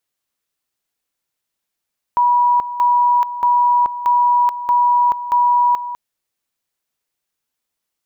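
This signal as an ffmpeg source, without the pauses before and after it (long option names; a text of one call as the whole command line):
ffmpeg -f lavfi -i "aevalsrc='pow(10,(-10.5-12.5*gte(mod(t,0.63),0.43))/20)*sin(2*PI*971*t)':duration=3.78:sample_rate=44100" out.wav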